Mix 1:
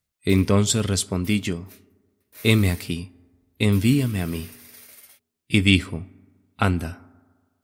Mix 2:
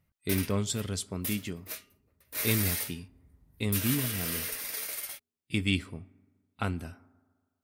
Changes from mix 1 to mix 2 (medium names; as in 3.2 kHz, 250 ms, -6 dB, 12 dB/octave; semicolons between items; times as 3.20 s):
speech -11.0 dB; background +10.5 dB